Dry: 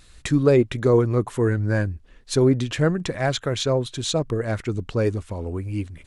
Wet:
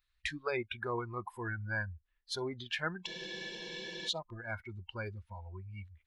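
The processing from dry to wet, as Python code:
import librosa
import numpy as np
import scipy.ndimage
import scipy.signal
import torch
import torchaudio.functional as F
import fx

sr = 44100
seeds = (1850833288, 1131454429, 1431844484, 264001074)

y = fx.graphic_eq_10(x, sr, hz=(125, 250, 500, 1000, 2000, 4000, 8000), db=(-9, -10, -11, 3, 5, 4, -12))
y = fx.noise_reduce_blind(y, sr, reduce_db=22)
y = fx.spec_freeze(y, sr, seeds[0], at_s=3.08, hold_s=0.99)
y = y * 10.0 ** (-8.0 / 20.0)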